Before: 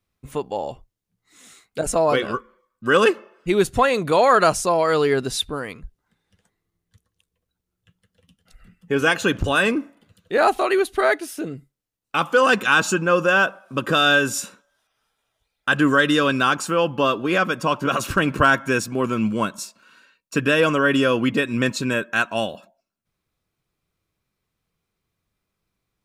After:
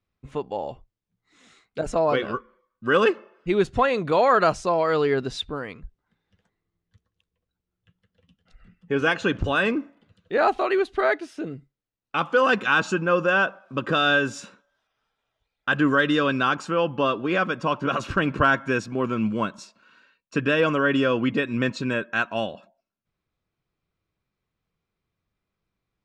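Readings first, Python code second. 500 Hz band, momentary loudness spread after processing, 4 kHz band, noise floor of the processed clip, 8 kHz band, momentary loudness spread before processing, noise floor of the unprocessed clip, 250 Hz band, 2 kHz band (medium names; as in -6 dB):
-3.0 dB, 12 LU, -5.5 dB, -84 dBFS, -14.0 dB, 12 LU, -81 dBFS, -2.5 dB, -3.5 dB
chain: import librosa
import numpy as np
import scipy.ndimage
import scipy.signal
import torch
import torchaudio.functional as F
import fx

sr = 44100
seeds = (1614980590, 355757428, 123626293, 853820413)

y = fx.air_absorb(x, sr, metres=130.0)
y = F.gain(torch.from_numpy(y), -2.5).numpy()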